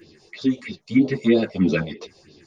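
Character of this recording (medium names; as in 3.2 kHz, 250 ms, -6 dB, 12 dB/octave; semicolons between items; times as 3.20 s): phasing stages 4, 3.1 Hz, lowest notch 250–2000 Hz; random-step tremolo 3.5 Hz; a shimmering, thickened sound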